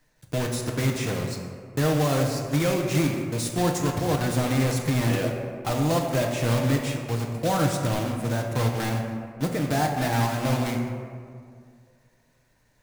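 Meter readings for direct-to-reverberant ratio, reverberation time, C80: 1.5 dB, 2.2 s, 5.0 dB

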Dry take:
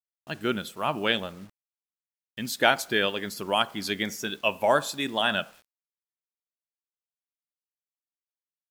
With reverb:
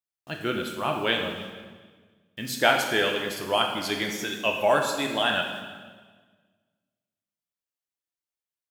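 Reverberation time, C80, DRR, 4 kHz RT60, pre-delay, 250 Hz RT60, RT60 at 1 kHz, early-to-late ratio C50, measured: 1.5 s, 6.5 dB, 1.5 dB, 1.4 s, 4 ms, 1.7 s, 1.5 s, 4.5 dB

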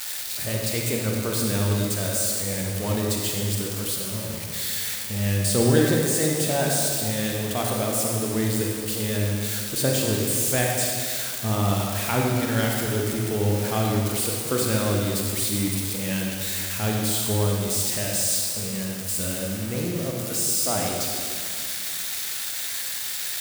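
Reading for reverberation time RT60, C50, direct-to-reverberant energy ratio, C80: 2.3 s, 0.0 dB, -1.0 dB, 1.5 dB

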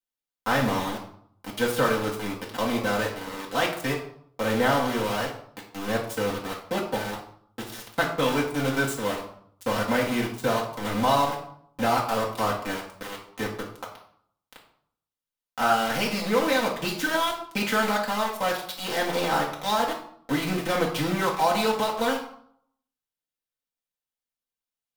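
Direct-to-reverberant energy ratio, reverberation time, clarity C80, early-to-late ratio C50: -4.0 dB, 0.65 s, 10.0 dB, 7.5 dB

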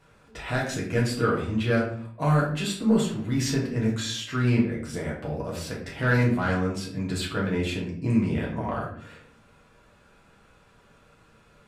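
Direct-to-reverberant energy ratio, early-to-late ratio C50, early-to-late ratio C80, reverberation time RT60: -5.0 dB, 5.5 dB, 9.5 dB, 0.55 s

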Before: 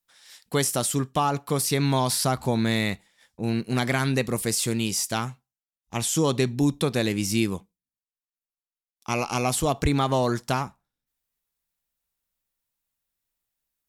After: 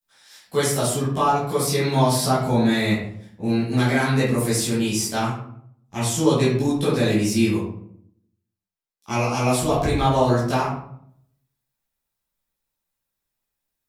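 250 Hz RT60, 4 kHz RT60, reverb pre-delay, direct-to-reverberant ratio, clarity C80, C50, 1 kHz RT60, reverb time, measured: 0.85 s, 0.40 s, 11 ms, -11.0 dB, 6.0 dB, 2.0 dB, 0.60 s, 0.65 s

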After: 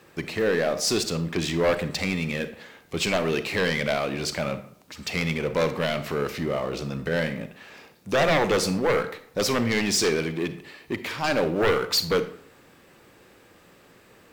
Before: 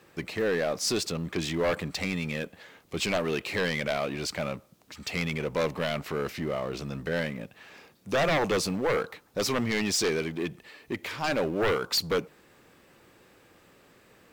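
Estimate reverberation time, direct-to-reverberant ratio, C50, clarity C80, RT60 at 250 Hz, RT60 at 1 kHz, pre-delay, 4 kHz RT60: 0.60 s, 10.5 dB, 12.5 dB, 15.5 dB, 0.65 s, 0.60 s, 33 ms, 0.40 s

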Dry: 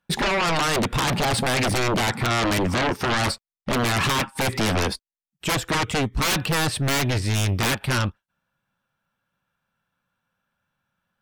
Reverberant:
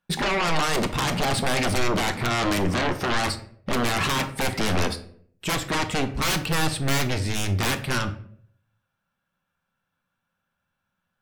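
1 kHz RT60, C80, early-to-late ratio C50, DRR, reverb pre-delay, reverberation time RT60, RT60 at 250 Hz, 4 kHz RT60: 0.50 s, 17.0 dB, 13.0 dB, 8.0 dB, 3 ms, 0.60 s, 0.65 s, 0.40 s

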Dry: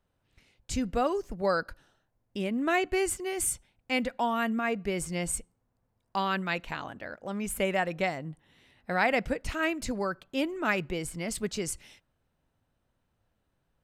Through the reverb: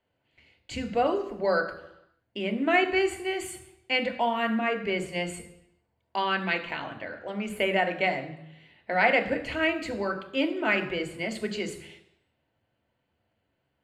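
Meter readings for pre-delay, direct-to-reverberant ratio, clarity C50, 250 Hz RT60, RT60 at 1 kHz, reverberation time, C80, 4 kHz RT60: 3 ms, 5.0 dB, 11.5 dB, 0.80 s, 0.80 s, 0.85 s, 13.5 dB, 0.85 s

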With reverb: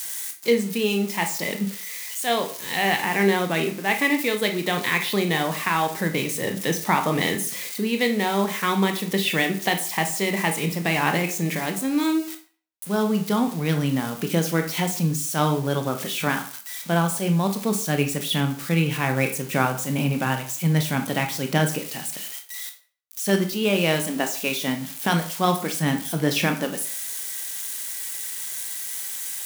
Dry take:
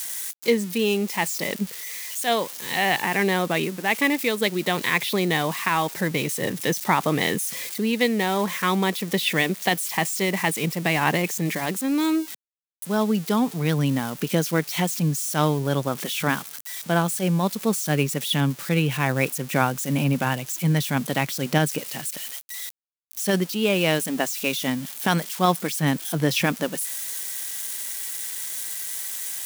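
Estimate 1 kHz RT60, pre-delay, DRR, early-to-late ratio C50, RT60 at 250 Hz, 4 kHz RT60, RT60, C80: 0.45 s, 18 ms, 5.0 dB, 11.0 dB, 0.40 s, 0.35 s, 0.45 s, 15.5 dB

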